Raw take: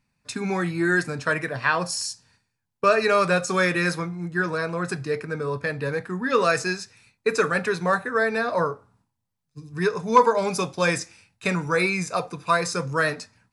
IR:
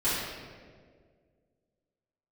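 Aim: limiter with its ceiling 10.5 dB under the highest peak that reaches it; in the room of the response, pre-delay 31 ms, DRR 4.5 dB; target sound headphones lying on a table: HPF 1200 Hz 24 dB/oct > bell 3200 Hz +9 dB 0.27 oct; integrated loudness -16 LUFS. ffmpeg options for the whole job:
-filter_complex "[0:a]alimiter=limit=-14.5dB:level=0:latency=1,asplit=2[a][b];[1:a]atrim=start_sample=2205,adelay=31[c];[b][c]afir=irnorm=-1:irlink=0,volume=-16dB[d];[a][d]amix=inputs=2:normalize=0,highpass=f=1.2k:w=0.5412,highpass=f=1.2k:w=1.3066,equalizer=f=3.2k:t=o:w=0.27:g=9,volume=12.5dB"

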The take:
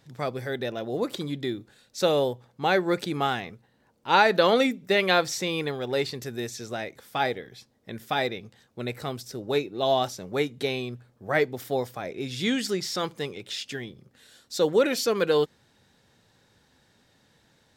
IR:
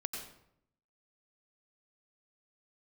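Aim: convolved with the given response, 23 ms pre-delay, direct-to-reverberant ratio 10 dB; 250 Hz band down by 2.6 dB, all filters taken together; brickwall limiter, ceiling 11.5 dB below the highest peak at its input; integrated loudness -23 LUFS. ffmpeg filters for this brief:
-filter_complex "[0:a]equalizer=f=250:t=o:g=-3.5,alimiter=limit=-16.5dB:level=0:latency=1,asplit=2[a][b];[1:a]atrim=start_sample=2205,adelay=23[c];[b][c]afir=irnorm=-1:irlink=0,volume=-10.5dB[d];[a][d]amix=inputs=2:normalize=0,volume=6.5dB"

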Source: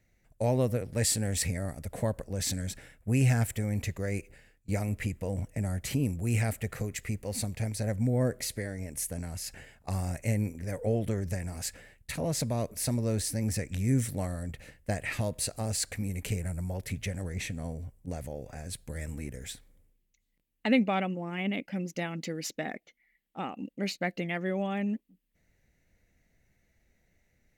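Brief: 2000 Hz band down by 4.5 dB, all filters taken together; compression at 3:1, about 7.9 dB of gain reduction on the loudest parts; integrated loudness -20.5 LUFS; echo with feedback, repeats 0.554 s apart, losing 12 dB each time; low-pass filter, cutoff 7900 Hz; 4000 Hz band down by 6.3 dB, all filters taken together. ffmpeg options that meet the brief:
-af "lowpass=7.9k,equalizer=f=2k:t=o:g=-3.5,equalizer=f=4k:t=o:g=-7,acompressor=threshold=-31dB:ratio=3,aecho=1:1:554|1108|1662:0.251|0.0628|0.0157,volume=16dB"

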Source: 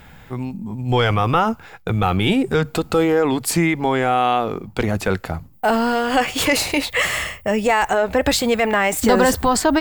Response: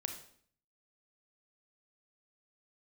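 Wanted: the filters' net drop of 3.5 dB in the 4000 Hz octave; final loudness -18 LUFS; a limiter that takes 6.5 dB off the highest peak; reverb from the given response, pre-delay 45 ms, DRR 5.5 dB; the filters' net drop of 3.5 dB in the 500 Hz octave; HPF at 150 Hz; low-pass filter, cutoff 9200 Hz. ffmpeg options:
-filter_complex "[0:a]highpass=150,lowpass=9.2k,equalizer=f=500:t=o:g=-4,equalizer=f=4k:t=o:g=-4.5,alimiter=limit=-11dB:level=0:latency=1,asplit=2[a][b];[1:a]atrim=start_sample=2205,adelay=45[c];[b][c]afir=irnorm=-1:irlink=0,volume=-5dB[d];[a][d]amix=inputs=2:normalize=0,volume=3.5dB"

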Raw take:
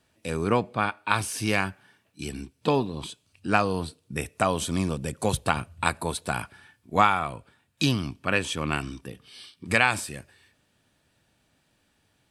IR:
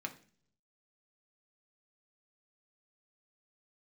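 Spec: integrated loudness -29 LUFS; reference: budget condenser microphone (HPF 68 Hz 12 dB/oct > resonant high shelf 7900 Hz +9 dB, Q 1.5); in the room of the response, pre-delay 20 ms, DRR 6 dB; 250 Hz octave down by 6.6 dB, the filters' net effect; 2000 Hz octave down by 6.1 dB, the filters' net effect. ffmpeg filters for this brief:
-filter_complex "[0:a]equalizer=f=250:t=o:g=-9,equalizer=f=2k:t=o:g=-8,asplit=2[a][b];[1:a]atrim=start_sample=2205,adelay=20[c];[b][c]afir=irnorm=-1:irlink=0,volume=-6.5dB[d];[a][d]amix=inputs=2:normalize=0,highpass=68,highshelf=f=7.9k:t=q:w=1.5:g=9,volume=-0.5dB"

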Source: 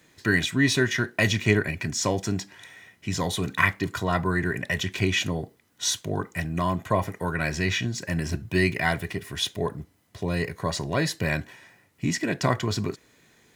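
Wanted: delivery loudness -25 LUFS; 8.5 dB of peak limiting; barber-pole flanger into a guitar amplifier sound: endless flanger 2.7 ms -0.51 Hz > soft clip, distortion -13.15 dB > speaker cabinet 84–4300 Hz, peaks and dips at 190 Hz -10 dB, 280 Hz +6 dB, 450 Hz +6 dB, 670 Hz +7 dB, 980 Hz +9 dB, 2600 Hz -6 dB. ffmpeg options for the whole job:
-filter_complex "[0:a]alimiter=limit=-15dB:level=0:latency=1,asplit=2[a][b];[b]adelay=2.7,afreqshift=-0.51[c];[a][c]amix=inputs=2:normalize=1,asoftclip=threshold=-26dB,highpass=84,equalizer=f=190:t=q:w=4:g=-10,equalizer=f=280:t=q:w=4:g=6,equalizer=f=450:t=q:w=4:g=6,equalizer=f=670:t=q:w=4:g=7,equalizer=f=980:t=q:w=4:g=9,equalizer=f=2.6k:t=q:w=4:g=-6,lowpass=f=4.3k:w=0.5412,lowpass=f=4.3k:w=1.3066,volume=7.5dB"

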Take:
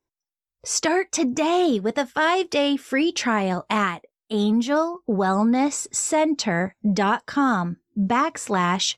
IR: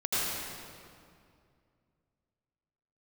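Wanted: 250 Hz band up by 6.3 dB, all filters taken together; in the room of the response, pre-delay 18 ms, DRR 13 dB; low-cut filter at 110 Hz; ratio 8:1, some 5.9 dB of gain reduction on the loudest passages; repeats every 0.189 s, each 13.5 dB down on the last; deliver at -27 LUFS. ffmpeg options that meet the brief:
-filter_complex "[0:a]highpass=110,equalizer=f=250:t=o:g=8,acompressor=threshold=-16dB:ratio=8,aecho=1:1:189|378:0.211|0.0444,asplit=2[a][b];[1:a]atrim=start_sample=2205,adelay=18[c];[b][c]afir=irnorm=-1:irlink=0,volume=-23dB[d];[a][d]amix=inputs=2:normalize=0,volume=-5.5dB"

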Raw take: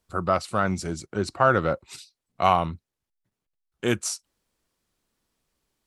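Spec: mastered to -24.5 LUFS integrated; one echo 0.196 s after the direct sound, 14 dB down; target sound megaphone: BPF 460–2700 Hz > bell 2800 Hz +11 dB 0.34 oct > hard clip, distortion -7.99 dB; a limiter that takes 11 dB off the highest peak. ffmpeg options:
-af "alimiter=limit=-16dB:level=0:latency=1,highpass=460,lowpass=2.7k,equalizer=f=2.8k:t=o:w=0.34:g=11,aecho=1:1:196:0.2,asoftclip=type=hard:threshold=-28dB,volume=12dB"

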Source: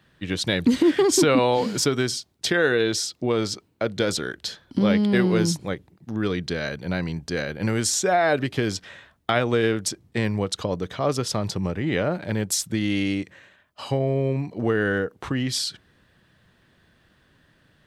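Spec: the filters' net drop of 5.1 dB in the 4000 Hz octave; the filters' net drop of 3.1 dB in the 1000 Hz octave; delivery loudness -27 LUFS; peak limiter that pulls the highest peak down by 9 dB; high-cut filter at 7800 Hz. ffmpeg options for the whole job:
-af "lowpass=7.8k,equalizer=f=1k:t=o:g=-4.5,equalizer=f=4k:t=o:g=-6,volume=2dB,alimiter=limit=-16.5dB:level=0:latency=1"

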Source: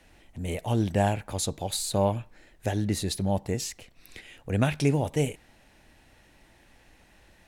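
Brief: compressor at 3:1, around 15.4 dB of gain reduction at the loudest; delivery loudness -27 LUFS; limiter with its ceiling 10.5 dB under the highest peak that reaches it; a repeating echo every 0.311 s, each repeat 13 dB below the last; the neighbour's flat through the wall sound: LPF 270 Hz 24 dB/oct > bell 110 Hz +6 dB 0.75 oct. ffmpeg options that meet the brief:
-af "acompressor=threshold=-41dB:ratio=3,alimiter=level_in=11dB:limit=-24dB:level=0:latency=1,volume=-11dB,lowpass=f=270:w=0.5412,lowpass=f=270:w=1.3066,equalizer=f=110:t=o:w=0.75:g=6,aecho=1:1:311|622|933:0.224|0.0493|0.0108,volume=17.5dB"

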